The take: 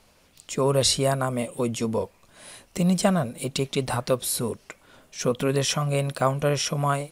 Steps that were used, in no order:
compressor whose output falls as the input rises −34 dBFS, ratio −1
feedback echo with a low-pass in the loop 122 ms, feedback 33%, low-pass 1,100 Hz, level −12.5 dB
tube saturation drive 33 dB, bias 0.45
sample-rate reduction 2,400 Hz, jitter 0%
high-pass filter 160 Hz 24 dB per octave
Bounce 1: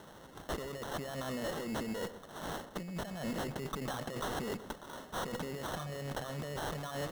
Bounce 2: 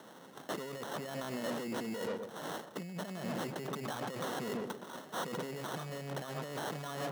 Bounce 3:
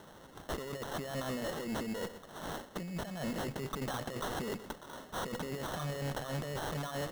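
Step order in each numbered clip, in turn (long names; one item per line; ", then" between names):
compressor whose output falls as the input rises, then high-pass filter, then sample-rate reduction, then tube saturation, then feedback echo with a low-pass in the loop
sample-rate reduction, then feedback echo with a low-pass in the loop, then compressor whose output falls as the input rises, then tube saturation, then high-pass filter
high-pass filter, then compressor whose output falls as the input rises, then tube saturation, then feedback echo with a low-pass in the loop, then sample-rate reduction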